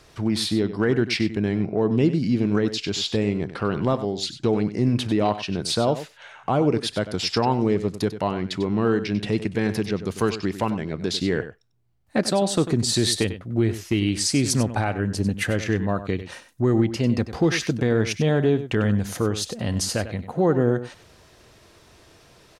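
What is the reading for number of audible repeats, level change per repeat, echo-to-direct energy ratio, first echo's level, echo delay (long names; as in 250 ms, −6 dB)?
1, repeats not evenly spaced, −12.5 dB, −12.5 dB, 96 ms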